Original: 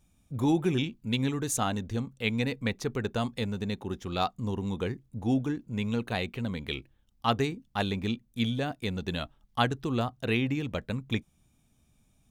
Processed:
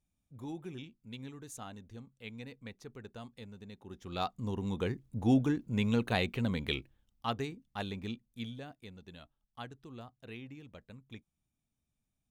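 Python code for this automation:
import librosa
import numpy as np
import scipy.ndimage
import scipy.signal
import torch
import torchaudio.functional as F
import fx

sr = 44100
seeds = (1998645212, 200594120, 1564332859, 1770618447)

y = fx.gain(x, sr, db=fx.line((3.76, -17.0), (4.17, -6.5), (5.25, 0.5), (6.69, 0.5), (7.34, -9.0), (8.13, -9.0), (8.99, -19.0)))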